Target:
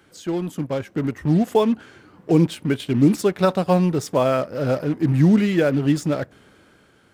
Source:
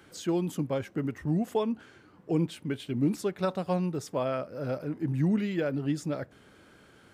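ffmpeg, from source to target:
-filter_complex "[0:a]dynaudnorm=f=300:g=7:m=2.51,asplit=2[s0][s1];[s1]acrusher=bits=4:mix=0:aa=0.5,volume=0.422[s2];[s0][s2]amix=inputs=2:normalize=0"

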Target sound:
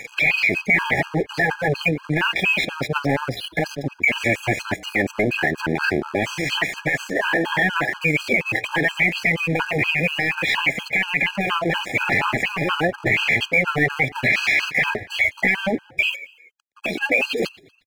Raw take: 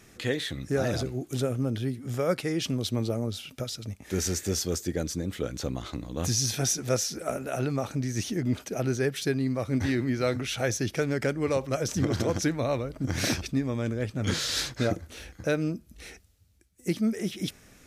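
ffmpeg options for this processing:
-filter_complex "[0:a]highpass=f=470:p=1,afftdn=nr=35:nf=-45,afftfilt=real='re*lt(hypot(re,im),0.1)':imag='im*lt(hypot(re,im),0.1)':win_size=1024:overlap=0.75,acompressor=mode=upward:threshold=0.0141:ratio=2.5,aeval=exprs='0.15*(cos(1*acos(clip(val(0)/0.15,-1,1)))-cos(1*PI/2))+0.0168*(cos(4*acos(clip(val(0)/0.15,-1,1)))-cos(4*PI/2))+0.0531*(cos(5*acos(clip(val(0)/0.15,-1,1)))-cos(5*PI/2))+0.000841*(cos(6*acos(clip(val(0)/0.15,-1,1)))-cos(6*PI/2))':c=same,asoftclip=type=tanh:threshold=0.0398,asetrate=55563,aresample=44100,atempo=0.793701,lowpass=f=2300:t=q:w=5.2,aeval=exprs='sgn(val(0))*max(abs(val(0))-0.00355,0)':c=same,asplit=4[s0][s1][s2][s3];[s1]adelay=118,afreqshift=-35,volume=0.0708[s4];[s2]adelay=236,afreqshift=-70,volume=0.0331[s5];[s3]adelay=354,afreqshift=-105,volume=0.0157[s6];[s0][s4][s5][s6]amix=inputs=4:normalize=0,alimiter=level_in=15:limit=0.891:release=50:level=0:latency=1,afftfilt=real='re*gt(sin(2*PI*4.2*pts/sr)*(1-2*mod(floor(b*sr/1024/820),2)),0)':imag='im*gt(sin(2*PI*4.2*pts/sr)*(1-2*mod(floor(b*sr/1024/820),2)),0)':win_size=1024:overlap=0.75,volume=0.447"

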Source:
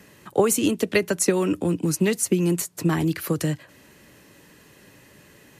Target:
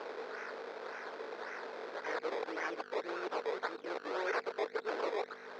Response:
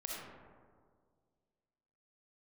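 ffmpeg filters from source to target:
-af "areverse,tiltshelf=f=740:g=-10,acompressor=threshold=0.00447:ratio=2,aeval=exprs='val(0)+0.01*(sin(2*PI*50*n/s)+sin(2*PI*2*50*n/s)/2+sin(2*PI*3*50*n/s)/3+sin(2*PI*4*50*n/s)/4+sin(2*PI*5*50*n/s)/5)':c=same,acrusher=samples=21:mix=1:aa=0.000001:lfo=1:lforange=21:lforate=1.8,asoftclip=type=hard:threshold=0.0133,highpass=f=390:w=0.5412,highpass=f=390:w=1.3066,equalizer=f=450:t=q:w=4:g=9,equalizer=f=1500:t=q:w=4:g=6,equalizer=f=2900:t=q:w=4:g=-8,lowpass=f=4600:w=0.5412,lowpass=f=4600:w=1.3066,volume=1.78" -ar 48000 -c:a libopus -b:a 128k

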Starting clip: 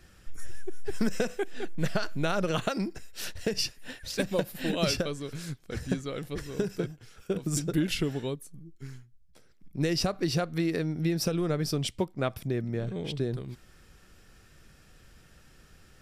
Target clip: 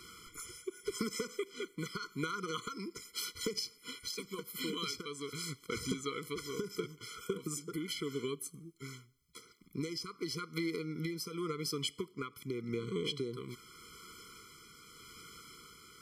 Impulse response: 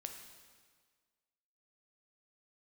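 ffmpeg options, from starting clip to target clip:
-filter_complex "[0:a]highpass=f=860:p=1,acompressor=threshold=0.00631:ratio=16,asoftclip=type=hard:threshold=0.0224,tremolo=f=0.85:d=0.37,asplit=2[s0][s1];[1:a]atrim=start_sample=2205,asetrate=88200,aresample=44100[s2];[s1][s2]afir=irnorm=-1:irlink=0,volume=0.473[s3];[s0][s3]amix=inputs=2:normalize=0,afftfilt=real='re*eq(mod(floor(b*sr/1024/490),2),0)':imag='im*eq(mod(floor(b*sr/1024/490),2),0)':win_size=1024:overlap=0.75,volume=3.98"

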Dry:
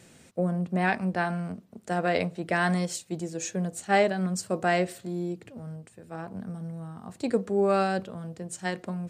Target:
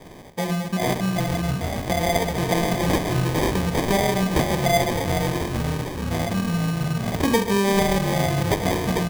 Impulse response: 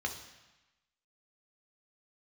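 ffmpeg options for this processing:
-filter_complex "[0:a]aemphasis=mode=production:type=riaa,asplit=5[s0][s1][s2][s3][s4];[s1]adelay=444,afreqshift=-51,volume=0.398[s5];[s2]adelay=888,afreqshift=-102,volume=0.127[s6];[s3]adelay=1332,afreqshift=-153,volume=0.0407[s7];[s4]adelay=1776,afreqshift=-204,volume=0.013[s8];[s0][s5][s6][s7][s8]amix=inputs=5:normalize=0,asplit=2[s9][s10];[1:a]atrim=start_sample=2205[s11];[s10][s11]afir=irnorm=-1:irlink=0,volume=0.631[s12];[s9][s12]amix=inputs=2:normalize=0,dynaudnorm=f=570:g=7:m=3.76,lowshelf=f=220:g=12,bandreject=f=60:t=h:w=6,bandreject=f=120:t=h:w=6,bandreject=f=180:t=h:w=6,bandreject=f=240:t=h:w=6,bandreject=f=300:t=h:w=6,acompressor=threshold=0.0447:ratio=3,acrusher=samples=32:mix=1:aa=0.000001,volume=2.11"

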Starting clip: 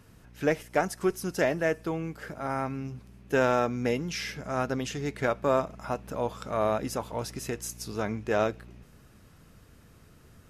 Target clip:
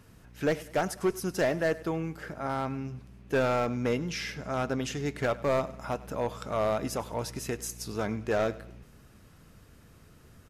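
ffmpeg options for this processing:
-filter_complex "[0:a]asettb=1/sr,asplit=3[s0][s1][s2];[s0]atrim=end=2.214[s3];[s1]atrim=start=2.21:end=4.83,asetpts=PTS-STARTPTS,afade=t=in:d=0.004:c=qsin,afade=t=out:st=2.616:d=0.004:c=qsin,highshelf=f=7200:g=-5.5[s4];[s2]atrim=start=4.826[s5];[s3][s4]acrossfade=d=0.004:c1=hsin:c2=qsin[s6];[s6][s5]acrossfade=d=0.004:c1=qsin:c2=hsin,asoftclip=type=hard:threshold=0.0944,aecho=1:1:99|198|297:0.106|0.0445|0.0187"

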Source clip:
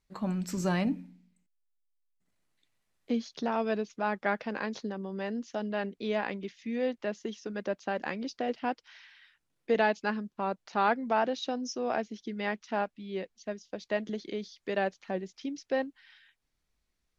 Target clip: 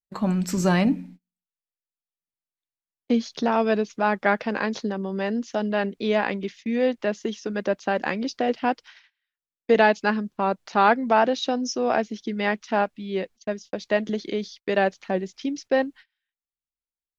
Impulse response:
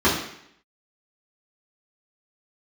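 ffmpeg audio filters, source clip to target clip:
-af "agate=range=0.0224:threshold=0.00282:ratio=16:detection=peak,volume=2.66"

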